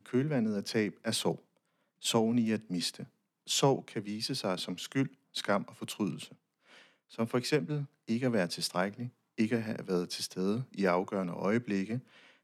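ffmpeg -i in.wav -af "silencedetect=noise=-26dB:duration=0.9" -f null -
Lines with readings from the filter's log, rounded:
silence_start: 6.08
silence_end: 7.20 | silence_duration: 1.11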